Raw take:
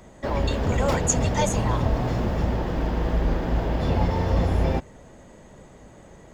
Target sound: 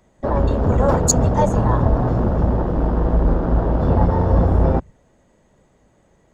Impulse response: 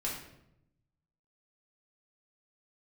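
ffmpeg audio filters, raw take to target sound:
-af "afwtdn=0.0398,volume=6.5dB"

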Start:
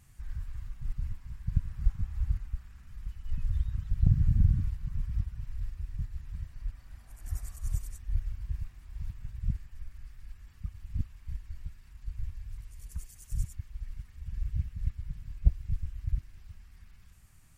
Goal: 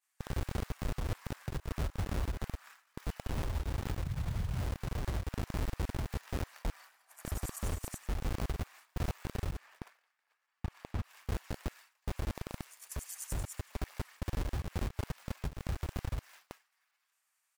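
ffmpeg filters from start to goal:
ffmpeg -i in.wav -filter_complex "[0:a]asplit=5[link_01][link_02][link_03][link_04][link_05];[link_02]adelay=91,afreqshift=-65,volume=-19.5dB[link_06];[link_03]adelay=182,afreqshift=-130,volume=-25.9dB[link_07];[link_04]adelay=273,afreqshift=-195,volume=-32.3dB[link_08];[link_05]adelay=364,afreqshift=-260,volume=-38.6dB[link_09];[link_01][link_06][link_07][link_08][link_09]amix=inputs=5:normalize=0,asplit=2[link_10][link_11];[link_11]acrusher=bits=4:mode=log:mix=0:aa=0.000001,volume=-5dB[link_12];[link_10][link_12]amix=inputs=2:normalize=0,highpass=frequency=75:poles=1,acrossover=split=670|1300[link_13][link_14][link_15];[link_13]acrusher=bits=5:mix=0:aa=0.000001[link_16];[link_14]dynaudnorm=framelen=130:gausssize=13:maxgain=5dB[link_17];[link_16][link_17][link_15]amix=inputs=3:normalize=0,asettb=1/sr,asplit=3[link_18][link_19][link_20];[link_18]atrim=end=9.574[link_21];[link_19]atrim=start=9.57:end=11.04,asetpts=PTS-STARTPTS,afade=type=in:duration=0.004:curve=qsin,afade=type=out:start_time=1.466:duration=0.004:curve=qsin,highshelf=frequency=4900:gain=-10.5[link_22];[link_20]atrim=start=11.036[link_23];[link_21][link_22]acrossfade=duration=0.004:curve1=hsin:curve2=qsin[link_24];[link_24][link_23]acrossfade=duration=0.004:curve1=qsin:curve2=hsin,agate=range=-33dB:threshold=-50dB:ratio=3:detection=peak,acompressor=threshold=-30dB:ratio=6,alimiter=level_in=9.5dB:limit=-24dB:level=0:latency=1:release=147,volume=-9.5dB,volume=6.5dB" out.wav

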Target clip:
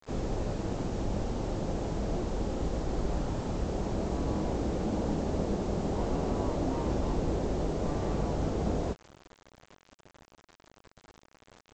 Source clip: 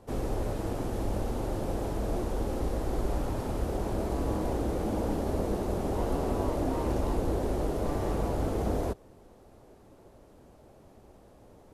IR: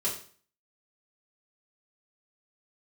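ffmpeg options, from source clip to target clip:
-af "adynamicequalizer=threshold=0.00316:dfrequency=170:dqfactor=2.2:tfrequency=170:tqfactor=2.2:attack=5:release=100:ratio=0.375:range=3.5:mode=boostabove:tftype=bell,aresample=16000,acrusher=bits=7:mix=0:aa=0.000001,aresample=44100,volume=-2dB"

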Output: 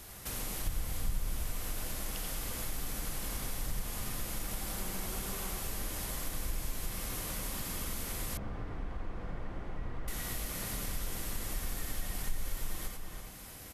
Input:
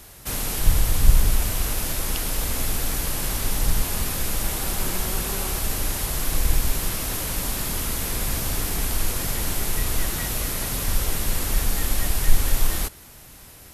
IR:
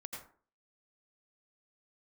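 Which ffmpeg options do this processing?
-filter_complex "[0:a]asplit=2[link_01][link_02];[link_02]adelay=332.4,volume=-10dB,highshelf=frequency=4000:gain=-7.48[link_03];[link_01][link_03]amix=inputs=2:normalize=0[link_04];[1:a]atrim=start_sample=2205,atrim=end_sample=4410[link_05];[link_04][link_05]afir=irnorm=-1:irlink=0,acompressor=threshold=-43dB:ratio=2,asettb=1/sr,asplit=3[link_06][link_07][link_08];[link_06]atrim=end=8.374[link_09];[link_07]atrim=start=8.37:end=10.08,asetpts=PTS-STARTPTS,afade=type=in:duration=0.004:curve=qsin,afade=type=out:start_time=1.706:duration=0.004:curve=qsin,lowpass=1400[link_10];[link_08]atrim=start=10.076[link_11];[link_09][link_10]acrossfade=duration=0.004:curve1=hsin:curve2=qsin[link_12];[link_12][link_11]acrossfade=duration=0.004:curve1=qsin:curve2=hsin,volume=1.5dB"

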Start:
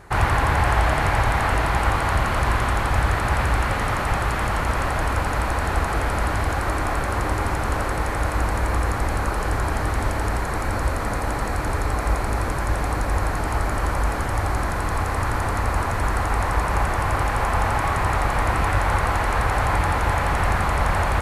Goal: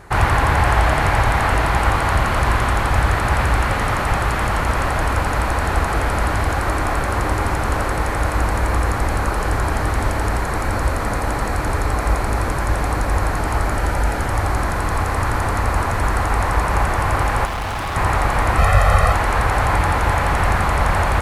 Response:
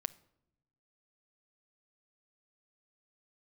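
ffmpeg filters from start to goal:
-filter_complex "[0:a]asettb=1/sr,asplit=3[link_01][link_02][link_03];[link_01]atrim=end=13.754[link_04];[link_02]atrim=start=13.75:end=14.23,asetpts=PTS-STARTPTS,afade=type=in:duration=0.004:curve=qsin,afade=type=out:start_time=0.476:duration=0.004:curve=qsin,asuperstop=centerf=1100:order=4:qfactor=6.7[link_05];[link_03]atrim=start=14.226[link_06];[link_04][link_05]acrossfade=duration=0.004:curve1=hsin:curve2=qsin[link_07];[link_07][link_06]acrossfade=duration=0.004:curve1=qsin:curve2=hsin,asettb=1/sr,asplit=3[link_08][link_09][link_10];[link_08]atrim=end=17.454[link_11];[link_09]atrim=start=17.45:end=17.96,asetpts=PTS-STARTPTS,afade=type=in:duration=0.004:curve=qsin,afade=type=out:start_time=0.506:duration=0.004:curve=qsin,asoftclip=type=hard:threshold=-25.5dB[link_12];[link_10]atrim=start=17.956[link_13];[link_11][link_12]acrossfade=duration=0.004:curve1=hsin:curve2=qsin[link_14];[link_14][link_13]acrossfade=duration=0.004:curve1=qsin:curve2=hsin,asettb=1/sr,asplit=3[link_15][link_16][link_17];[link_15]atrim=end=18.584[link_18];[link_16]atrim=start=18.58:end=19.13,asetpts=PTS-STARTPTS,afade=type=in:duration=0.004:curve=qsin,afade=type=out:start_time=0.546:duration=0.004:curve=qsin,aecho=1:1:1.6:0.8,atrim=end_sample=24255[link_19];[link_17]atrim=start=19.126[link_20];[link_18][link_19]acrossfade=duration=0.004:curve1=hsin:curve2=qsin[link_21];[link_21][link_20]acrossfade=duration=0.004:curve1=qsin:curve2=hsin,volume=3.5dB"

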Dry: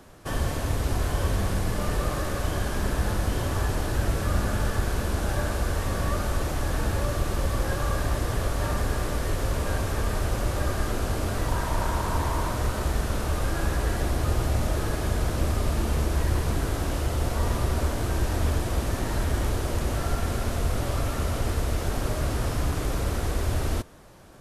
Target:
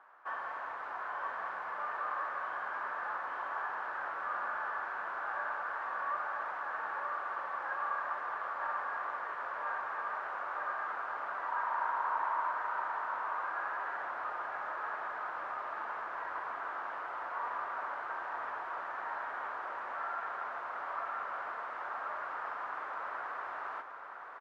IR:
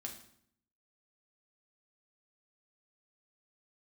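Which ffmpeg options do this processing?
-af "asuperpass=centerf=1200:order=4:qfactor=1.5,aecho=1:1:971:0.473"

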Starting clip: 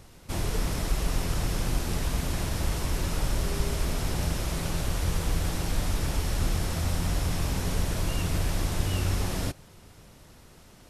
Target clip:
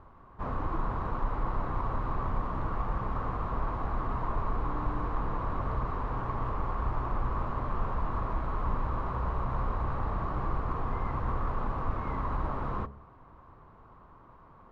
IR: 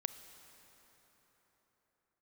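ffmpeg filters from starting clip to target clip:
-filter_complex "[0:a]lowpass=frequency=1500:width_type=q:width=5.6,asetrate=32634,aresample=44100,asplit=2[link_01][link_02];[link_02]asoftclip=type=hard:threshold=-21dB,volume=-10dB[link_03];[link_01][link_03]amix=inputs=2:normalize=0,bandreject=frequency=69.43:width_type=h:width=4,bandreject=frequency=138.86:width_type=h:width=4,bandreject=frequency=208.29:width_type=h:width=4,bandreject=frequency=277.72:width_type=h:width=4,bandreject=frequency=347.15:width_type=h:width=4,bandreject=frequency=416.58:width_type=h:width=4,bandreject=frequency=486.01:width_type=h:width=4,bandreject=frequency=555.44:width_type=h:width=4,bandreject=frequency=624.87:width_type=h:width=4,bandreject=frequency=694.3:width_type=h:width=4,bandreject=frequency=763.73:width_type=h:width=4,volume=-6dB"

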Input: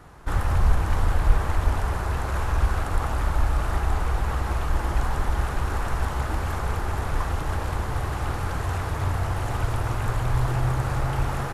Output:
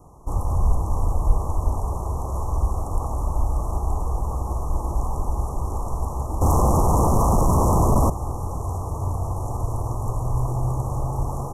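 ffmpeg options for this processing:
ffmpeg -i in.wav -filter_complex "[0:a]asettb=1/sr,asplit=3[link_01][link_02][link_03];[link_01]atrim=end=6.414[link_04];[link_02]atrim=start=6.41:end=8.1,asetpts=PTS-STARTPTS,afade=type=in:duration=0.004:curve=qsin,afade=type=out:start_time=1.686:duration=0.004:curve=qsin,aeval=exprs='0.224*sin(PI/2*3.98*val(0)/0.224)':channel_layout=same[link_05];[link_03]atrim=start=8.096[link_06];[link_04][link_05]acrossfade=duration=0.004:curve1=hsin:curve2=qsin[link_07];[link_07][link_06]acrossfade=duration=0.004:curve1=qsin:curve2=hsin,asuperstop=centerf=2600:order=20:qfactor=0.58" out.wav

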